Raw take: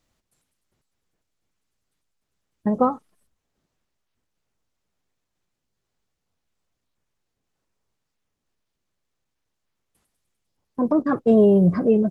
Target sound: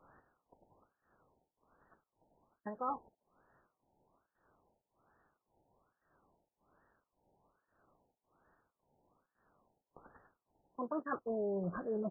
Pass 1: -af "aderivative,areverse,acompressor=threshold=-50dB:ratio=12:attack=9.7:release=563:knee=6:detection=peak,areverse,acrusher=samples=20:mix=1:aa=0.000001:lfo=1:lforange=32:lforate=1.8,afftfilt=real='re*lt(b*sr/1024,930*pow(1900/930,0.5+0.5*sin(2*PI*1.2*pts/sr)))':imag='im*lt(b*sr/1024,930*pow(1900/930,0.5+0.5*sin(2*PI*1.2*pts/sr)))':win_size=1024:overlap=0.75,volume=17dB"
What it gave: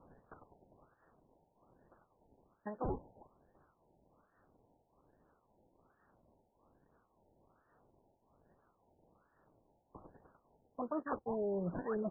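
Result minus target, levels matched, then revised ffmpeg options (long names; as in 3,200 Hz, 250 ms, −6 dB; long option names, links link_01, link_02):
sample-and-hold swept by an LFO: distortion +10 dB
-af "aderivative,areverse,acompressor=threshold=-50dB:ratio=12:attack=9.7:release=563:knee=6:detection=peak,areverse,acrusher=samples=5:mix=1:aa=0.000001:lfo=1:lforange=8:lforate=1.8,afftfilt=real='re*lt(b*sr/1024,930*pow(1900/930,0.5+0.5*sin(2*PI*1.2*pts/sr)))':imag='im*lt(b*sr/1024,930*pow(1900/930,0.5+0.5*sin(2*PI*1.2*pts/sr)))':win_size=1024:overlap=0.75,volume=17dB"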